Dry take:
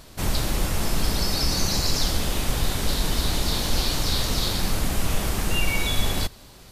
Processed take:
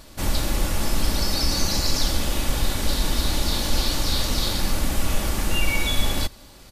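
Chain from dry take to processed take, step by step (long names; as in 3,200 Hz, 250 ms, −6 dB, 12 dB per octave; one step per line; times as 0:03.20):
comb filter 3.5 ms, depth 33%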